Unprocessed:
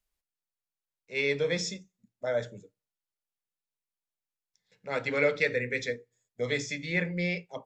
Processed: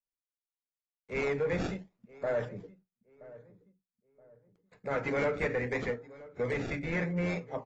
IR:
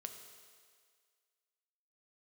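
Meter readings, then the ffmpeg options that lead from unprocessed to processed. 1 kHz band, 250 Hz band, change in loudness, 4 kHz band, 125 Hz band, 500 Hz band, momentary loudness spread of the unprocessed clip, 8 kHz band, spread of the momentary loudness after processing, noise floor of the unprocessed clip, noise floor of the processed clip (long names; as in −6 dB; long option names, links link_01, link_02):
+2.5 dB, +0.5 dB, −3.0 dB, −12.0 dB, +0.5 dB, −1.5 dB, 11 LU, below −10 dB, 15 LU, below −85 dBFS, below −85 dBFS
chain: -filter_complex "[0:a]asplit=2[link_01][link_02];[link_02]acompressor=threshold=-40dB:ratio=8,volume=0.5dB[link_03];[link_01][link_03]amix=inputs=2:normalize=0,asoftclip=type=tanh:threshold=-25dB,equalizer=frequency=3200:width_type=o:width=0.22:gain=-9.5,agate=range=-33dB:threshold=-59dB:ratio=3:detection=peak,asplit=2[link_04][link_05];[link_05]adelay=974,lowpass=frequency=1100:poles=1,volume=-18dB,asplit=2[link_06][link_07];[link_07]adelay=974,lowpass=frequency=1100:poles=1,volume=0.38,asplit=2[link_08][link_09];[link_09]adelay=974,lowpass=frequency=1100:poles=1,volume=0.38[link_10];[link_04][link_06][link_08][link_10]amix=inputs=4:normalize=0,acrossover=split=2500[link_11][link_12];[link_12]acrusher=samples=29:mix=1:aa=0.000001:lfo=1:lforange=29:lforate=0.78[link_13];[link_11][link_13]amix=inputs=2:normalize=0" -ar 24000 -c:a aac -b:a 24k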